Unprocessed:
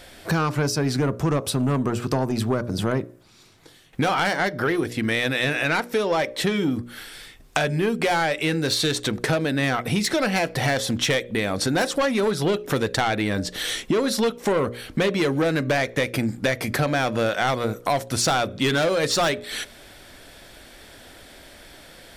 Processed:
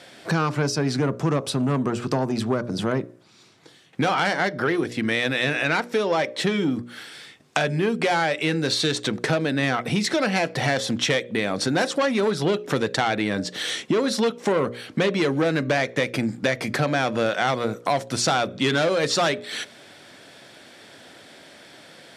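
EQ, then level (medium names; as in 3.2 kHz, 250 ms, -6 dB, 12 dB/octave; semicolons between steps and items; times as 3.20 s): high-pass 120 Hz 24 dB/octave; low-pass 8 kHz 12 dB/octave; 0.0 dB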